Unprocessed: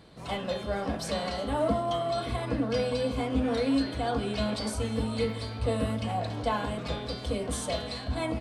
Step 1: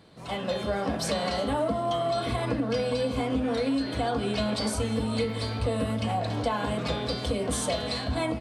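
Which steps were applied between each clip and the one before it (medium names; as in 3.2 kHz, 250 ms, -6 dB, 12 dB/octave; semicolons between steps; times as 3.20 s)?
level rider gain up to 7.5 dB; high-pass 72 Hz; compression, threshold -23 dBFS, peak gain reduction 9 dB; trim -1 dB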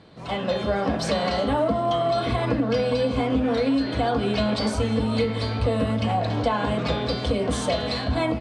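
distance through air 79 m; trim +5 dB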